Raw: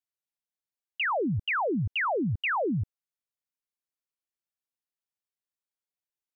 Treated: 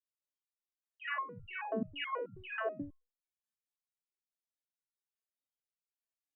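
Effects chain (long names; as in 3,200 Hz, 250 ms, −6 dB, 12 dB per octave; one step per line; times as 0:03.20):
rotating-speaker cabinet horn 6.3 Hz, later 0.7 Hz, at 0:01.16
reverb whose tail is shaped and stops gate 80 ms rising, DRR −6 dB
step-sequenced resonator 9.3 Hz 220–1,400 Hz
level +1.5 dB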